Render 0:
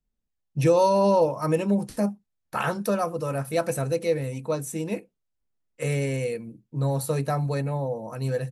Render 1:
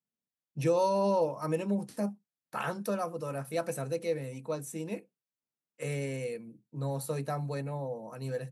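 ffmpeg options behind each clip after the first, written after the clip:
-af "highpass=f=130:w=0.5412,highpass=f=130:w=1.3066,volume=0.422"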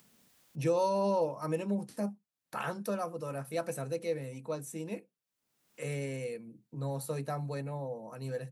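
-af "acompressor=mode=upward:threshold=0.01:ratio=2.5,volume=0.794"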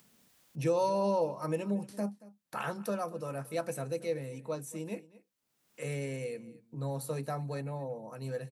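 -af "aecho=1:1:229:0.1"

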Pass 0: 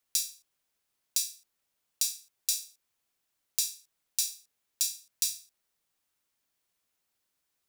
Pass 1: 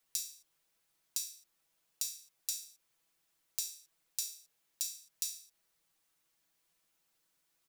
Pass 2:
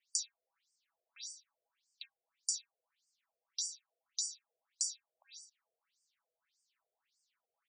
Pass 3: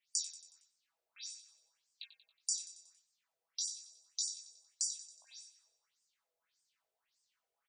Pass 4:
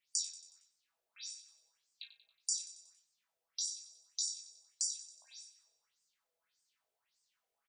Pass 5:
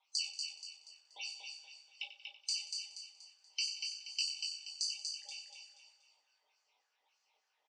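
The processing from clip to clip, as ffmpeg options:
-af "aecho=1:1:6.1:0.65,acompressor=threshold=0.0126:ratio=3,volume=1.12"
-af "afftfilt=real='re*between(b*sr/1024,520*pow(6600/520,0.5+0.5*sin(2*PI*1.7*pts/sr))/1.41,520*pow(6600/520,0.5+0.5*sin(2*PI*1.7*pts/sr))*1.41)':imag='im*between(b*sr/1024,520*pow(6600/520,0.5+0.5*sin(2*PI*1.7*pts/sr))/1.41,520*pow(6600/520,0.5+0.5*sin(2*PI*1.7*pts/sr))*1.41)':win_size=1024:overlap=0.75,volume=1.5"
-af "flanger=delay=18.5:depth=5:speed=1,aecho=1:1:92|184|276|368|460:0.237|0.119|0.0593|0.0296|0.0148,volume=1.41"
-filter_complex "[0:a]asplit=2[s0][s1];[s1]adelay=35,volume=0.282[s2];[s0][s2]amix=inputs=2:normalize=0"
-af "afftfilt=real='real(if(lt(b,960),b+48*(1-2*mod(floor(b/48),2)),b),0)':imag='imag(if(lt(b,960),b+48*(1-2*mod(floor(b/48),2)),b),0)':win_size=2048:overlap=0.75,highpass=f=470:w=0.5412,highpass=f=470:w=1.3066,equalizer=f=830:t=q:w=4:g=8,equalizer=f=1200:t=q:w=4:g=10,equalizer=f=1700:t=q:w=4:g=-7,equalizer=f=2600:t=q:w=4:g=4,equalizer=f=4100:t=q:w=4:g=-5,lowpass=f=5400:w=0.5412,lowpass=f=5400:w=1.3066,aecho=1:1:239|478|717|956|1195:0.562|0.219|0.0855|0.0334|0.013,volume=1.88"

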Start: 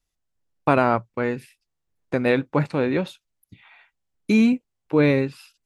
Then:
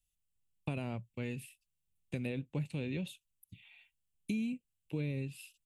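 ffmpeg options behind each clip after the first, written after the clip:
-filter_complex "[0:a]firequalizer=gain_entry='entry(160,0);entry(300,-10);entry(1300,-23);entry(2700,4);entry(4900,-7);entry(8000,6)':delay=0.05:min_phase=1,acrossover=split=560|1500[s0][s1][s2];[s2]alimiter=level_in=1.78:limit=0.0631:level=0:latency=1:release=374,volume=0.562[s3];[s0][s1][s3]amix=inputs=3:normalize=0,acompressor=threshold=0.0398:ratio=6,volume=0.562"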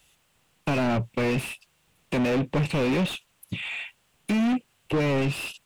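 -filter_complex "[0:a]asplit=2[s0][s1];[s1]highpass=f=720:p=1,volume=70.8,asoftclip=type=tanh:threshold=0.075[s2];[s0][s2]amix=inputs=2:normalize=0,lowpass=f=1200:p=1,volume=0.501,volume=2.24"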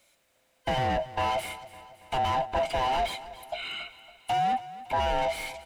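-af "afftfilt=real='real(if(lt(b,1008),b+24*(1-2*mod(floor(b/24),2)),b),0)':imag='imag(if(lt(b,1008),b+24*(1-2*mod(floor(b/24),2)),b),0)':win_size=2048:overlap=0.75,aecho=1:1:279|558|837|1116|1395:0.15|0.0763|0.0389|0.0198|0.0101,volume=0.708"

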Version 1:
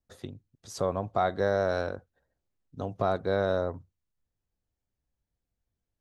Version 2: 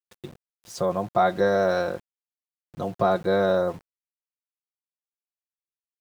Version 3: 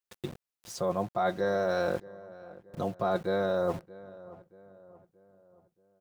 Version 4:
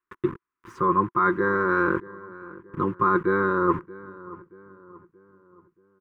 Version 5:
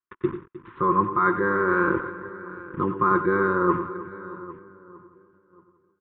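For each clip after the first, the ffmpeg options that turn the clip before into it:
-af "aecho=1:1:5.7:0.68,dynaudnorm=f=240:g=7:m=1.78,aeval=exprs='val(0)*gte(abs(val(0)),0.0075)':c=same,volume=0.891"
-filter_complex "[0:a]areverse,acompressor=threshold=0.0398:ratio=6,areverse,asplit=2[s0][s1];[s1]adelay=628,lowpass=f=1700:p=1,volume=0.119,asplit=2[s2][s3];[s3]adelay=628,lowpass=f=1700:p=1,volume=0.47,asplit=2[s4][s5];[s5]adelay=628,lowpass=f=1700:p=1,volume=0.47,asplit=2[s6][s7];[s7]adelay=628,lowpass=f=1700:p=1,volume=0.47[s8];[s0][s2][s4][s6][s8]amix=inputs=5:normalize=0,volume=1.33"
-af "firequalizer=gain_entry='entry(220,0);entry(350,10);entry(680,-28);entry(1000,13);entry(2600,-6);entry(4300,-22)':delay=0.05:min_phase=1,volume=2"
-filter_complex "[0:a]agate=range=0.355:threshold=0.002:ratio=16:detection=peak,asplit=2[s0][s1];[s1]aecho=0:1:94|117|309|801:0.282|0.178|0.15|0.126[s2];[s0][s2]amix=inputs=2:normalize=0,aresample=8000,aresample=44100"

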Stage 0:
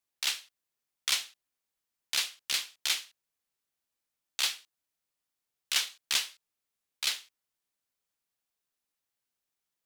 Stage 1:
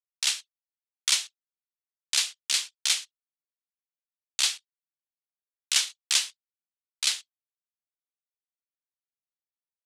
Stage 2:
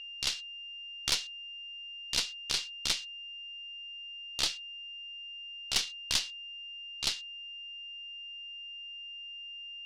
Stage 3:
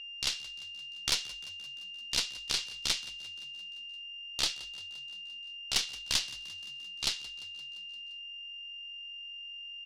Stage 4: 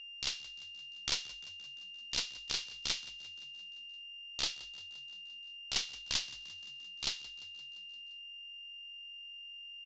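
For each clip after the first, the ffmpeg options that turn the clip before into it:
-af "lowpass=f=9000:w=0.5412,lowpass=f=9000:w=1.3066,aemphasis=mode=production:type=bsi,anlmdn=0.0398"
-af "aeval=exprs='val(0)+0.02*sin(2*PI*2800*n/s)':c=same,lowpass=f=5100:t=q:w=1.6,aeval=exprs='0.596*(cos(1*acos(clip(val(0)/0.596,-1,1)))-cos(1*PI/2))+0.211*(cos(2*acos(clip(val(0)/0.596,-1,1)))-cos(2*PI/2))+0.0668*(cos(3*acos(clip(val(0)/0.596,-1,1)))-cos(3*PI/2))':c=same,volume=0.501"
-filter_complex "[0:a]asplit=7[s0][s1][s2][s3][s4][s5][s6];[s1]adelay=173,afreqshift=45,volume=0.119[s7];[s2]adelay=346,afreqshift=90,volume=0.075[s8];[s3]adelay=519,afreqshift=135,volume=0.0473[s9];[s4]adelay=692,afreqshift=180,volume=0.0299[s10];[s5]adelay=865,afreqshift=225,volume=0.0186[s11];[s6]adelay=1038,afreqshift=270,volume=0.0117[s12];[s0][s7][s8][s9][s10][s11][s12]amix=inputs=7:normalize=0"
-af "aresample=16000,aresample=44100,volume=0.596"

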